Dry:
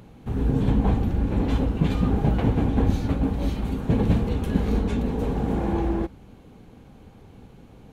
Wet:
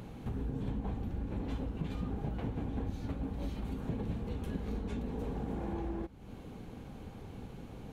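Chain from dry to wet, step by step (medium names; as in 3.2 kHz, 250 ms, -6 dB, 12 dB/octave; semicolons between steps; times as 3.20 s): compression 4:1, threshold -38 dBFS, peak gain reduction 19.5 dB; trim +1 dB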